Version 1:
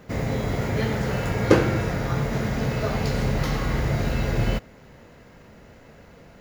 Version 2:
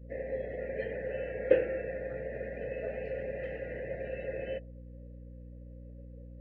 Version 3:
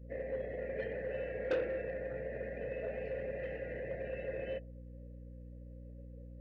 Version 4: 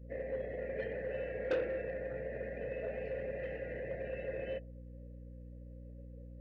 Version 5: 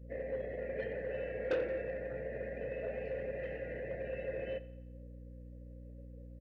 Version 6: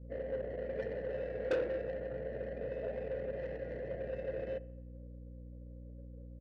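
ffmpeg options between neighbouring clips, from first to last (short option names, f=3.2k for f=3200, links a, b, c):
-filter_complex "[0:a]asplit=3[a][b][c];[a]bandpass=f=530:t=q:w=8,volume=0dB[d];[b]bandpass=f=1.84k:t=q:w=8,volume=-6dB[e];[c]bandpass=f=2.48k:t=q:w=8,volume=-9dB[f];[d][e][f]amix=inputs=3:normalize=0,aeval=exprs='val(0)+0.00501*(sin(2*PI*60*n/s)+sin(2*PI*2*60*n/s)/2+sin(2*PI*3*60*n/s)/3+sin(2*PI*4*60*n/s)/4+sin(2*PI*5*60*n/s)/5)':c=same,afftdn=nr=21:nf=-49"
-af "asoftclip=type=tanh:threshold=-25.5dB,volume=-2dB"
-af anull
-af "aecho=1:1:87|174|261|348|435:0.126|0.068|0.0367|0.0198|0.0107"
-af "adynamicsmooth=sensitivity=4:basefreq=1.1k,volume=1dB"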